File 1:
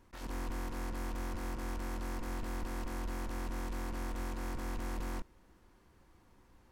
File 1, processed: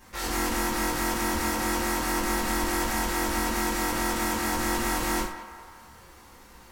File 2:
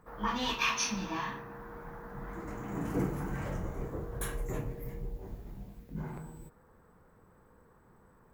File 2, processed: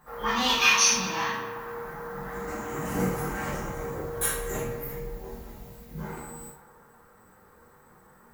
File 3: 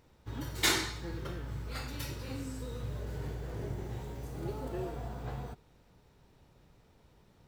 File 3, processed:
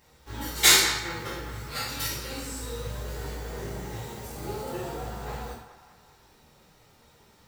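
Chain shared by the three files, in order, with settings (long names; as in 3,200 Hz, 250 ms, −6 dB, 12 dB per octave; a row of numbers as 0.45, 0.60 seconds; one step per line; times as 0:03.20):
spectral tilt +2 dB per octave
flanger 0.34 Hz, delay 1 ms, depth 9.4 ms, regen −54%
feedback echo with a band-pass in the loop 203 ms, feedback 57%, band-pass 1,100 Hz, level −10 dB
reverb whose tail is shaped and stops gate 160 ms falling, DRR −6 dB
loudness normalisation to −27 LKFS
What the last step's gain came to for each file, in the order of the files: +13.0, +5.0, +4.5 decibels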